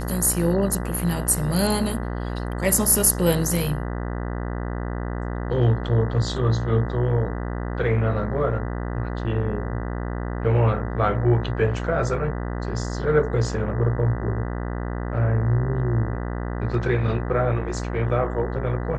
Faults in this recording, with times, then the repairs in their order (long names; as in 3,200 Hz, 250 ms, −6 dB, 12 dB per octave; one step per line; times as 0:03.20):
mains buzz 60 Hz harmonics 33 −28 dBFS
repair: hum removal 60 Hz, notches 33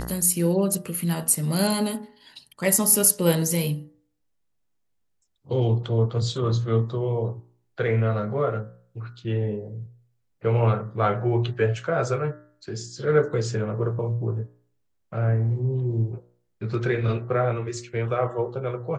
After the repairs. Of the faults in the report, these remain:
none of them is left